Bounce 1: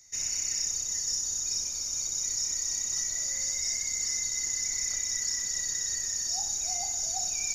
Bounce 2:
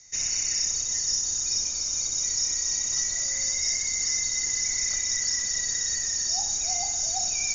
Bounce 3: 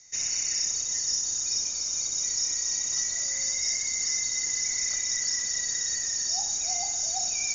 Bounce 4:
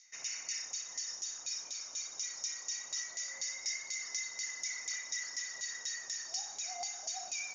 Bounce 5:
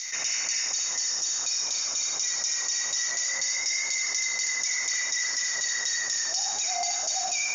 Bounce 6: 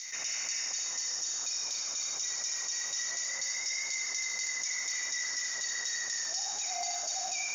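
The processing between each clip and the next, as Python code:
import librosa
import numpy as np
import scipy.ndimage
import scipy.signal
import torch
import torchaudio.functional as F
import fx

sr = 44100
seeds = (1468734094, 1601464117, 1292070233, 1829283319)

y1 = scipy.signal.sosfilt(scipy.signal.ellip(4, 1.0, 80, 6500.0, 'lowpass', fs=sr, output='sos'), x)
y1 = F.gain(torch.from_numpy(y1), 6.0).numpy()
y2 = fx.low_shelf(y1, sr, hz=98.0, db=-9.5)
y2 = F.gain(torch.from_numpy(y2), -1.5).numpy()
y3 = 10.0 ** (-16.5 / 20.0) * np.tanh(y2 / 10.0 ** (-16.5 / 20.0))
y3 = fx.filter_lfo_bandpass(y3, sr, shape='saw_down', hz=4.1, low_hz=730.0, high_hz=3500.0, q=1.1)
y3 = F.gain(torch.from_numpy(y3), -1.5).numpy()
y4 = y3 + 10.0 ** (-5.0 / 20.0) * np.pad(y3, (int(77 * sr / 1000.0), 0))[:len(y3)]
y4 = fx.env_flatten(y4, sr, amount_pct=70)
y4 = F.gain(torch.from_numpy(y4), 7.5).numpy()
y5 = fx.dmg_crackle(y4, sr, seeds[0], per_s=150.0, level_db=-39.0)
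y5 = y5 + 10.0 ** (-8.5 / 20.0) * np.pad(y5, (int(151 * sr / 1000.0), 0))[:len(y5)]
y5 = F.gain(torch.from_numpy(y5), -7.0).numpy()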